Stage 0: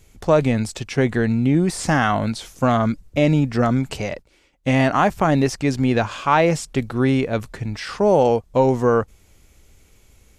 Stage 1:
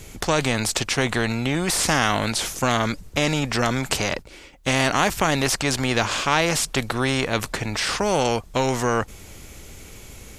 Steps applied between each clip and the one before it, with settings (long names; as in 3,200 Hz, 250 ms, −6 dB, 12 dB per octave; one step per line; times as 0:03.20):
every bin compressed towards the loudest bin 2 to 1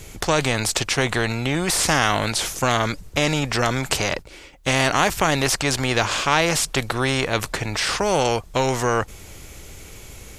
parametric band 230 Hz −4.5 dB 0.47 octaves
level +1.5 dB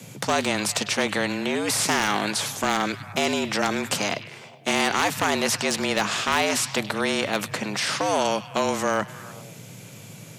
frequency shifter +100 Hz
wave folding −9.5 dBFS
echo through a band-pass that steps 101 ms, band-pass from 3,700 Hz, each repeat −0.7 octaves, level −10.5 dB
level −3 dB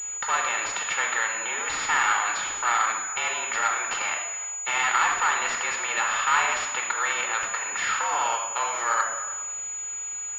high-pass with resonance 1,200 Hz, resonance Q 1.8
rectangular room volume 3,300 cubic metres, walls furnished, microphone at 4.3 metres
switching amplifier with a slow clock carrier 6,900 Hz
level −4 dB